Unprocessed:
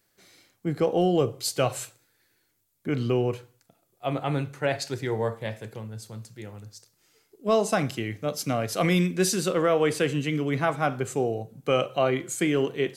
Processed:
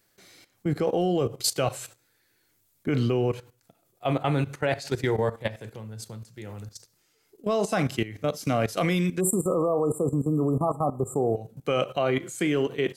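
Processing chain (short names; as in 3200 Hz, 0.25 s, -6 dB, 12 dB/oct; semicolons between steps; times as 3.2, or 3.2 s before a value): spectral delete 9.2–11.36, 1300–7100 Hz; level quantiser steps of 15 dB; gain +6.5 dB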